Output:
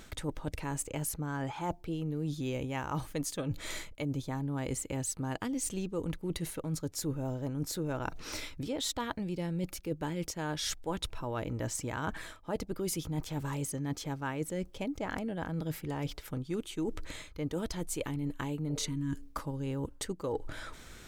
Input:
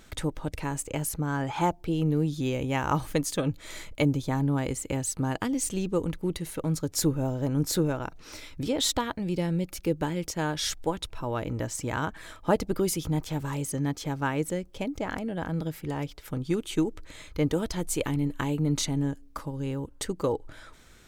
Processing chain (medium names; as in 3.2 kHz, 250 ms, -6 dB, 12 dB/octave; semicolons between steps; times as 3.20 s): spectral replace 18.72–19.25 s, 370–890 Hz both; reverse; compression 6:1, threshold -37 dBFS, peak gain reduction 18.5 dB; reverse; trim +4.5 dB